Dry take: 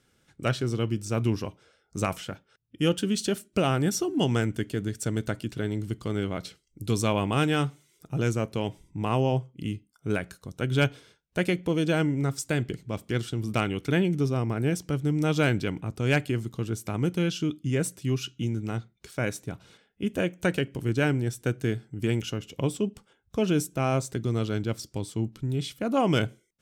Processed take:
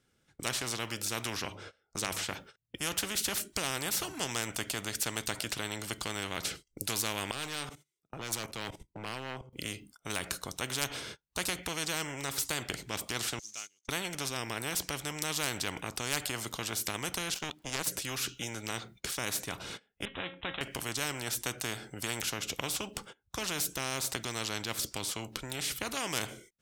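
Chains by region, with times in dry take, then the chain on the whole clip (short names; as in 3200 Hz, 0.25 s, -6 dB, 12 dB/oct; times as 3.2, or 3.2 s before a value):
1.37–2.29 high shelf 7100 Hz -9.5 dB + notches 50/100 Hz
7.31–9.53 level quantiser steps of 18 dB + overloaded stage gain 32.5 dB + three-band expander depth 100%
13.39–13.89 block floating point 5-bit + band-pass 6400 Hz, Q 11
17.34–17.87 zero-crossing step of -42 dBFS + power-law curve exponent 2
20.05–20.61 bell 4000 Hz +9.5 dB 0.35 oct + resonator 270 Hz, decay 0.19 s, mix 80% + careless resampling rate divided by 6×, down none, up filtered
whole clip: gate -54 dBFS, range -21 dB; spectral compressor 4:1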